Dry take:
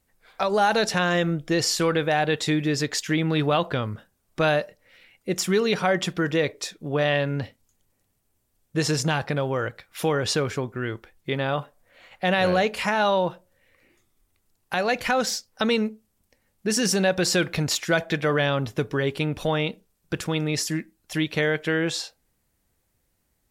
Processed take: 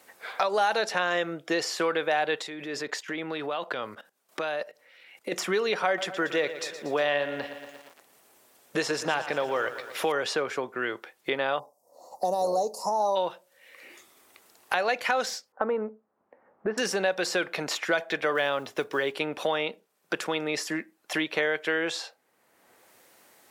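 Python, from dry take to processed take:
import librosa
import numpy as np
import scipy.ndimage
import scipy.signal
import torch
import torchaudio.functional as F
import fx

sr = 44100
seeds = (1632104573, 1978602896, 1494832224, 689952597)

y = fx.level_steps(x, sr, step_db=17, at=(2.42, 5.32))
y = fx.echo_crushed(y, sr, ms=117, feedback_pct=55, bits=8, wet_db=-13.0, at=(5.86, 10.12))
y = fx.ellip_bandstop(y, sr, low_hz=930.0, high_hz=5300.0, order=3, stop_db=40, at=(11.58, 13.15), fade=0.02)
y = fx.lowpass(y, sr, hz=1300.0, slope=24, at=(15.52, 16.78))
y = fx.block_float(y, sr, bits=7, at=(18.35, 19.13))
y = scipy.signal.sosfilt(scipy.signal.butter(2, 480.0, 'highpass', fs=sr, output='sos'), y)
y = fx.high_shelf(y, sr, hz=3600.0, db=-7.0)
y = fx.band_squash(y, sr, depth_pct=70)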